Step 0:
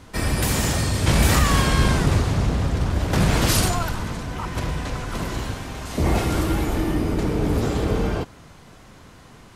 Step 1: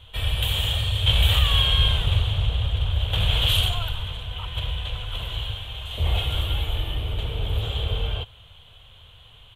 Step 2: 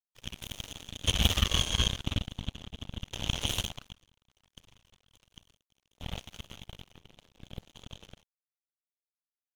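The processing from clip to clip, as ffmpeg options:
ffmpeg -i in.wav -af "firequalizer=gain_entry='entry(100,0);entry(170,-18);entry(290,-25);entry(470,-9);entry(2000,-10);entry(3200,14);entry(5000,-23);entry(7200,-15);entry(14000,-5)':delay=0.05:min_phase=1" out.wav
ffmpeg -i in.wav -af "aeval=exprs='0.473*(cos(1*acos(clip(val(0)/0.473,-1,1)))-cos(1*PI/2))+0.15*(cos(3*acos(clip(val(0)/0.473,-1,1)))-cos(3*PI/2))+0.00841*(cos(7*acos(clip(val(0)/0.473,-1,1)))-cos(7*PI/2))+0.00596*(cos(8*acos(clip(val(0)/0.473,-1,1)))-cos(8*PI/2))':channel_layout=same,aeval=exprs='sgn(val(0))*max(abs(val(0))-0.00376,0)':channel_layout=same" out.wav

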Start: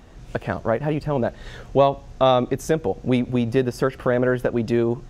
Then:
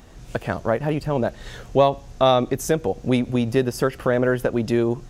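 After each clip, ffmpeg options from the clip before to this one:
ffmpeg -i in.wav -af "highshelf=frequency=5700:gain=9" out.wav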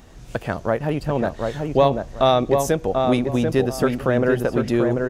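ffmpeg -i in.wav -filter_complex "[0:a]asplit=2[link_01][link_02];[link_02]adelay=739,lowpass=frequency=1700:poles=1,volume=-3.5dB,asplit=2[link_03][link_04];[link_04]adelay=739,lowpass=frequency=1700:poles=1,volume=0.25,asplit=2[link_05][link_06];[link_06]adelay=739,lowpass=frequency=1700:poles=1,volume=0.25,asplit=2[link_07][link_08];[link_08]adelay=739,lowpass=frequency=1700:poles=1,volume=0.25[link_09];[link_01][link_03][link_05][link_07][link_09]amix=inputs=5:normalize=0" out.wav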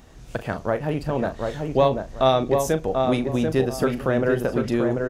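ffmpeg -i in.wav -filter_complex "[0:a]asplit=2[link_01][link_02];[link_02]adelay=38,volume=-11.5dB[link_03];[link_01][link_03]amix=inputs=2:normalize=0,volume=-2.5dB" out.wav

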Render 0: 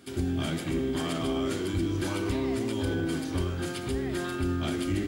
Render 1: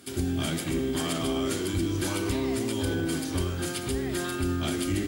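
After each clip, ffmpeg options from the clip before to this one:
ffmpeg -i in.wav -af "aemphasis=mode=production:type=cd,volume=1dB" out.wav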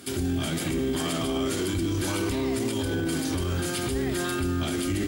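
ffmpeg -i in.wav -af "alimiter=level_in=1.5dB:limit=-24dB:level=0:latency=1:release=27,volume=-1.5dB,volume=6dB" out.wav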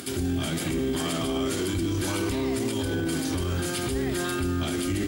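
ffmpeg -i in.wav -af "acompressor=mode=upward:threshold=-34dB:ratio=2.5" out.wav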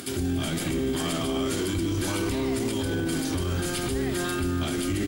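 ffmpeg -i in.wav -filter_complex "[0:a]asplit=7[link_01][link_02][link_03][link_04][link_05][link_06][link_07];[link_02]adelay=287,afreqshift=-74,volume=-17.5dB[link_08];[link_03]adelay=574,afreqshift=-148,volume=-21.8dB[link_09];[link_04]adelay=861,afreqshift=-222,volume=-26.1dB[link_10];[link_05]adelay=1148,afreqshift=-296,volume=-30.4dB[link_11];[link_06]adelay=1435,afreqshift=-370,volume=-34.7dB[link_12];[link_07]adelay=1722,afreqshift=-444,volume=-39dB[link_13];[link_01][link_08][link_09][link_10][link_11][link_12][link_13]amix=inputs=7:normalize=0" out.wav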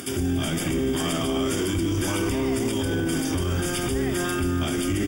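ffmpeg -i in.wav -af "asuperstop=centerf=4100:order=12:qfactor=5,volume=2.5dB" out.wav

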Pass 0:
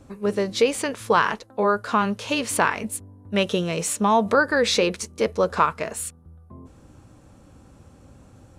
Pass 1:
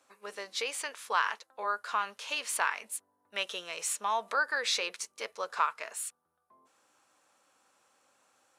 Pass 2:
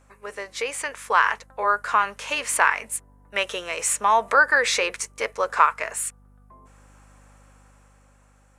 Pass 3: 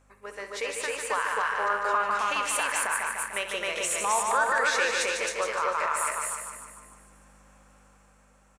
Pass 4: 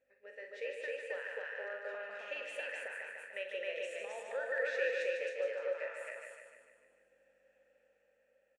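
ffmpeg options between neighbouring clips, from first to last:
ffmpeg -i in.wav -af "highpass=1000,volume=-6.5dB" out.wav
ffmpeg -i in.wav -af "equalizer=frequency=250:width_type=o:width=1:gain=7,equalizer=frequency=500:width_type=o:width=1:gain=6,equalizer=frequency=1000:width_type=o:width=1:gain=4,equalizer=frequency=2000:width_type=o:width=1:gain=8,equalizer=frequency=4000:width_type=o:width=1:gain=-5,equalizer=frequency=8000:width_type=o:width=1:gain=6,aeval=exprs='val(0)+0.00141*(sin(2*PI*50*n/s)+sin(2*PI*2*50*n/s)/2+sin(2*PI*3*50*n/s)/3+sin(2*PI*4*50*n/s)/4+sin(2*PI*5*50*n/s)/5)':channel_layout=same,dynaudnorm=framelen=200:gausssize=11:maxgain=6dB" out.wav
ffmpeg -i in.wav -filter_complex "[0:a]asplit=2[link_01][link_02];[link_02]aecho=0:1:149|298|447|596|745|894|1043:0.473|0.26|0.143|0.0787|0.0433|0.0238|0.0131[link_03];[link_01][link_03]amix=inputs=2:normalize=0,alimiter=limit=-13dB:level=0:latency=1:release=107,asplit=2[link_04][link_05];[link_05]aecho=0:1:64.14|265.3:0.282|0.891[link_06];[link_04][link_06]amix=inputs=2:normalize=0,volume=-5dB" out.wav
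ffmpeg -i in.wav -filter_complex "[0:a]asplit=3[link_01][link_02][link_03];[link_01]bandpass=frequency=530:width_type=q:width=8,volume=0dB[link_04];[link_02]bandpass=frequency=1840:width_type=q:width=8,volume=-6dB[link_05];[link_03]bandpass=frequency=2480:width_type=q:width=8,volume=-9dB[link_06];[link_04][link_05][link_06]amix=inputs=3:normalize=0,asplit=2[link_07][link_08];[link_08]adelay=43,volume=-8.5dB[link_09];[link_07][link_09]amix=inputs=2:normalize=0,volume=-1.5dB" out.wav

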